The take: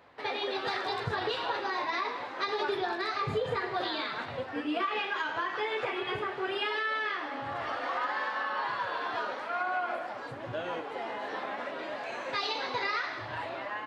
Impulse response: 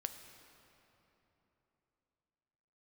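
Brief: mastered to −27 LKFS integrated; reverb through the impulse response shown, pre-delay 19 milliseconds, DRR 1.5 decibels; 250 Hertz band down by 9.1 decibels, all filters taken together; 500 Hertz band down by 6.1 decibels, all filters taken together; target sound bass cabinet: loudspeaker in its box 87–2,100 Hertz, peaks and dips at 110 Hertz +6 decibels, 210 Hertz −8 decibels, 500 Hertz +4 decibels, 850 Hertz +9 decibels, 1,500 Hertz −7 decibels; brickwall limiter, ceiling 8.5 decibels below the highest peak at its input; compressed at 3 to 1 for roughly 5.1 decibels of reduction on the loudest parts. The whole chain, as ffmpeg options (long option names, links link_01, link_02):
-filter_complex "[0:a]equalizer=frequency=250:width_type=o:gain=-8.5,equalizer=frequency=500:width_type=o:gain=-8.5,acompressor=threshold=-36dB:ratio=3,alimiter=level_in=9.5dB:limit=-24dB:level=0:latency=1,volume=-9.5dB,asplit=2[link_01][link_02];[1:a]atrim=start_sample=2205,adelay=19[link_03];[link_02][link_03]afir=irnorm=-1:irlink=0,volume=0dB[link_04];[link_01][link_04]amix=inputs=2:normalize=0,highpass=frequency=87:width=0.5412,highpass=frequency=87:width=1.3066,equalizer=frequency=110:width_type=q:width=4:gain=6,equalizer=frequency=210:width_type=q:width=4:gain=-8,equalizer=frequency=500:width_type=q:width=4:gain=4,equalizer=frequency=850:width_type=q:width=4:gain=9,equalizer=frequency=1500:width_type=q:width=4:gain=-7,lowpass=frequency=2100:width=0.5412,lowpass=frequency=2100:width=1.3066,volume=11.5dB"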